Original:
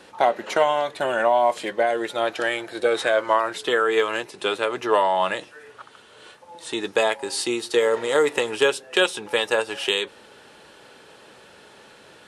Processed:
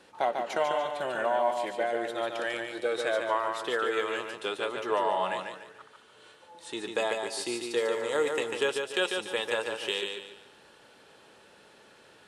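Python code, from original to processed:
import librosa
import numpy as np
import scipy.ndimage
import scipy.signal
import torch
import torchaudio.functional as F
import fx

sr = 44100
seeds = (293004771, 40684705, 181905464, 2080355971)

y = fx.echo_feedback(x, sr, ms=145, feedback_pct=34, wet_db=-5)
y = y * librosa.db_to_amplitude(-9.0)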